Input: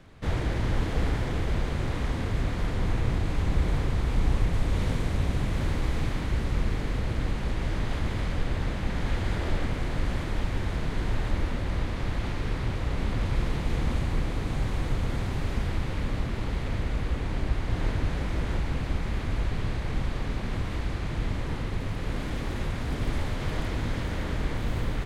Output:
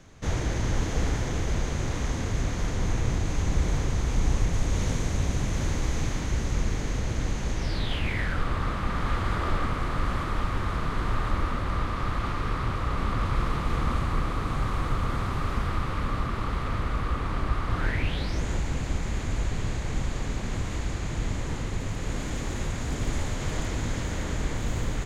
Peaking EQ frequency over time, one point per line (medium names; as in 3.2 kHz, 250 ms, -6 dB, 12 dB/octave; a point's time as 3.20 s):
peaking EQ +15 dB 0.42 oct
7.56 s 6.4 kHz
8.44 s 1.2 kHz
17.76 s 1.2 kHz
18.43 s 6.9 kHz